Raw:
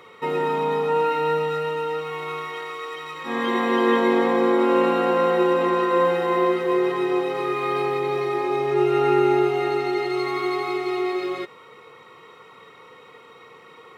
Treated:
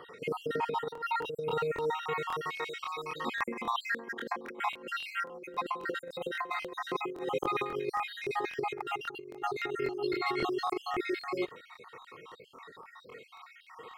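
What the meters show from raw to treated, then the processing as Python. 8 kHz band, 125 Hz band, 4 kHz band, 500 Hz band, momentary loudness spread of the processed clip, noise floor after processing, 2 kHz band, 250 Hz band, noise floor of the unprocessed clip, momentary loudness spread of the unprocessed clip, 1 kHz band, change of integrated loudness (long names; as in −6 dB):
can't be measured, −13.5 dB, −6.5 dB, −15.0 dB, 18 LU, −56 dBFS, −7.5 dB, −16.5 dB, −48 dBFS, 11 LU, −10.5 dB, −12.5 dB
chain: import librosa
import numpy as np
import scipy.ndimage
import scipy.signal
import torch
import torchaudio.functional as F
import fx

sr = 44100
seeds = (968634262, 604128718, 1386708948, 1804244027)

y = fx.spec_dropout(x, sr, seeds[0], share_pct=56)
y = fx.over_compress(y, sr, threshold_db=-28.0, ratio=-0.5)
y = fx.buffer_crackle(y, sr, first_s=0.93, period_s=0.27, block=1024, kind='repeat')
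y = F.gain(torch.from_numpy(y), -5.0).numpy()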